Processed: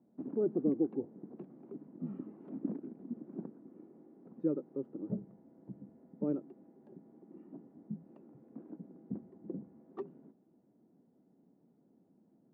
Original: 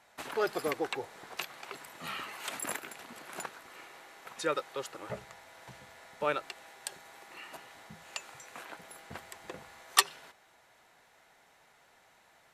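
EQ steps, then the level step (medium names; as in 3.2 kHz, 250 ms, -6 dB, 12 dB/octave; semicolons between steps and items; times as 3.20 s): Butterworth band-pass 240 Hz, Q 1.7; tilt EQ -2 dB/octave; +9.5 dB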